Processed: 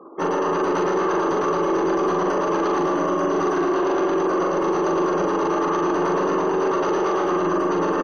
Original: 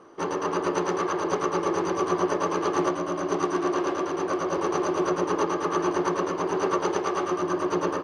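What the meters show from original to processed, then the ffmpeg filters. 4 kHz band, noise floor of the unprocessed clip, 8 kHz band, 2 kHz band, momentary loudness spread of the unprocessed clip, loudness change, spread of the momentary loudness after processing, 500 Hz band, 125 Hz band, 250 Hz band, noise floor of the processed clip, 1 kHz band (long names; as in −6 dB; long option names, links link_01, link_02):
+1.5 dB, −32 dBFS, −2.0 dB, +4.5 dB, 2 LU, +5.0 dB, 1 LU, +5.5 dB, +3.5 dB, +5.5 dB, −22 dBFS, +5.0 dB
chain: -filter_complex "[0:a]acrossover=split=100[link_01][link_02];[link_01]aeval=exprs='abs(val(0))':channel_layout=same[link_03];[link_02]aecho=1:1:137:0.376[link_04];[link_03][link_04]amix=inputs=2:normalize=0,afftfilt=real='re*gte(hypot(re,im),0.00501)':imag='im*gte(hypot(re,im),0.00501)':win_size=1024:overlap=0.75,aemphasis=mode=reproduction:type=50fm,bandreject=frequency=2300:width=15,asplit=2[link_05][link_06];[link_06]adelay=42,volume=-3dB[link_07];[link_05][link_07]amix=inputs=2:normalize=0,alimiter=limit=-21dB:level=0:latency=1:release=10,volume=7dB"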